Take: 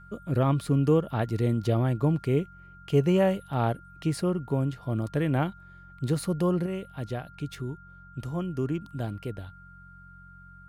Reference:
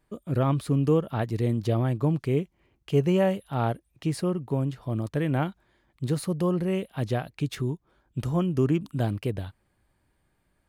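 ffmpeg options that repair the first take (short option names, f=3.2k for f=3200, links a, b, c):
-af "bandreject=f=45.1:t=h:w=4,bandreject=f=90.2:t=h:w=4,bandreject=f=135.3:t=h:w=4,bandreject=f=180.4:t=h:w=4,bandreject=f=1.4k:w=30,asetnsamples=n=441:p=0,asendcmd='6.66 volume volume 6dB',volume=0dB"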